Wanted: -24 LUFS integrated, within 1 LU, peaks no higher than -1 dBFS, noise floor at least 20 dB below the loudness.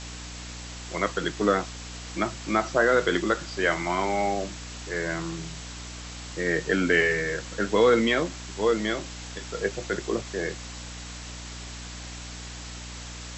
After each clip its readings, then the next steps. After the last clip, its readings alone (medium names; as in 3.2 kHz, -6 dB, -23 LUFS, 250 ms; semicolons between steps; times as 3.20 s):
hum 60 Hz; highest harmonic 300 Hz; hum level -39 dBFS; noise floor -39 dBFS; noise floor target -47 dBFS; loudness -26.5 LUFS; peak level -9.0 dBFS; loudness target -24.0 LUFS
-> hum notches 60/120/180/240/300 Hz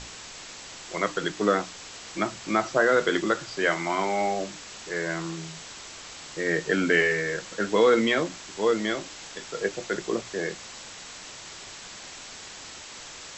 hum not found; noise floor -43 dBFS; noise floor target -46 dBFS
-> noise print and reduce 6 dB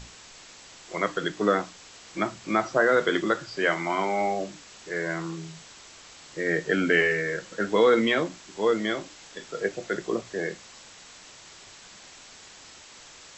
noise floor -49 dBFS; loudness -26.0 LUFS; peak level -9.0 dBFS; loudness target -24.0 LUFS
-> trim +2 dB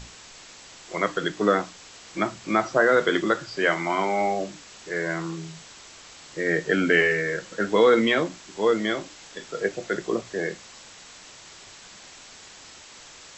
loudness -24.0 LUFS; peak level -7.0 dBFS; noise floor -47 dBFS